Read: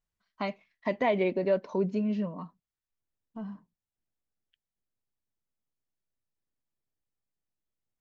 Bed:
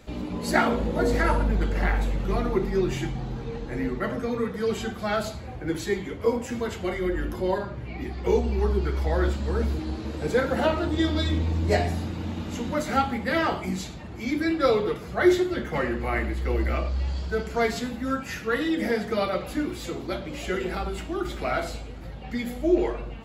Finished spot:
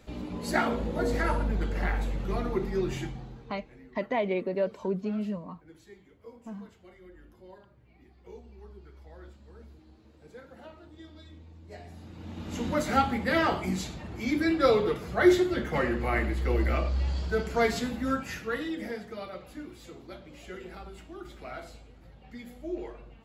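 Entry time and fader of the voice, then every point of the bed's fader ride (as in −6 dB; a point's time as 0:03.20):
3.10 s, −2.0 dB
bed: 0:03.00 −5 dB
0:03.88 −25 dB
0:11.69 −25 dB
0:12.64 −1 dB
0:18.09 −1 dB
0:19.16 −14 dB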